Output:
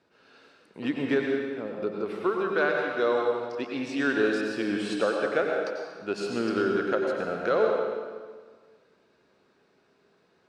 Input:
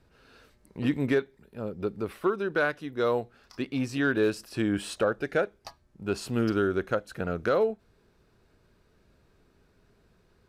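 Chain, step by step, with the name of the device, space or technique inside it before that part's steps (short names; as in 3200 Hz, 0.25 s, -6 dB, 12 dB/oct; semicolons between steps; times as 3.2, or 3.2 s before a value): supermarket ceiling speaker (BPF 260–6000 Hz; reverb RT60 1.6 s, pre-delay 86 ms, DRR 0 dB)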